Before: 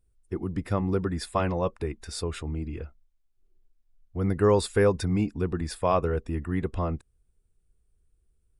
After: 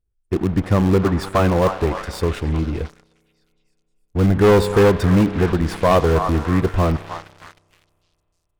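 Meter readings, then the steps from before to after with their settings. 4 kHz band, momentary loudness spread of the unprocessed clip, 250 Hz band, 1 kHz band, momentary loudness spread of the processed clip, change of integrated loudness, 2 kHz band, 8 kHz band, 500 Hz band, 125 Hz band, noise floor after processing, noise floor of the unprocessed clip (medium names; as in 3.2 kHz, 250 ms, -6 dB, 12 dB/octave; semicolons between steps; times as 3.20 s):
+8.0 dB, 13 LU, +10.5 dB, +9.5 dB, 12 LU, +9.5 dB, +10.5 dB, +4.0 dB, +9.0 dB, +10.5 dB, -71 dBFS, -70 dBFS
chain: self-modulated delay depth 0.14 ms; treble shelf 2.1 kHz -5.5 dB; in parallel at -5.5 dB: bit crusher 4-bit; on the sum: treble shelf 7.2 kHz -6 dB; on a send: repeats whose band climbs or falls 308 ms, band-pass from 1 kHz, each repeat 0.7 oct, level -9.5 dB; on the sum: spring tank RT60 3 s, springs 31 ms, chirp 55 ms, DRR 16.5 dB; waveshaping leveller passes 3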